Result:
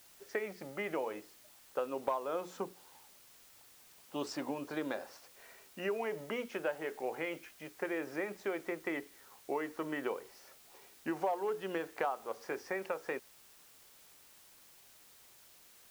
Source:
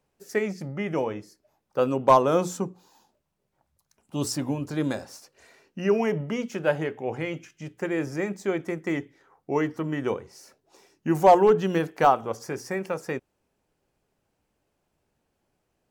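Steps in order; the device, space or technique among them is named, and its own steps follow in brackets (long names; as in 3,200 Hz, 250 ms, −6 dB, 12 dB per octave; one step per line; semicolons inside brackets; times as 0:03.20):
baby monitor (band-pass filter 430–3,100 Hz; downward compressor, threshold −31 dBFS, peak gain reduction 17.5 dB; white noise bed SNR 20 dB)
level −1.5 dB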